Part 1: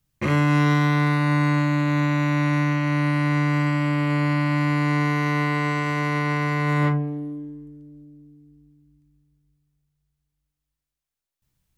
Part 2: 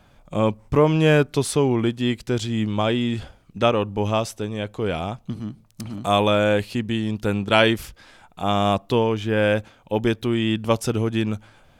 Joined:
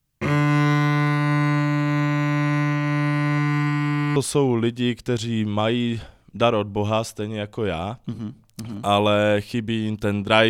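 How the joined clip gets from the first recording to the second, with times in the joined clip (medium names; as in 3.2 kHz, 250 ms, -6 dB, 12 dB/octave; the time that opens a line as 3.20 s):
part 1
3.38–4.16 s: band-stop 590 Hz, Q 10
4.16 s: go over to part 2 from 1.37 s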